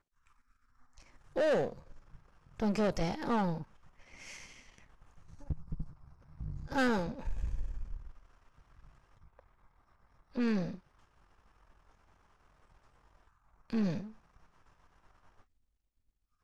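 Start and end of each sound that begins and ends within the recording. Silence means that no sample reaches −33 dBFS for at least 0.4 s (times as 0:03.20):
0:01.36–0:01.70
0:02.60–0:03.62
0:05.50–0:05.82
0:06.41–0:07.94
0:10.37–0:10.70
0:13.70–0:14.00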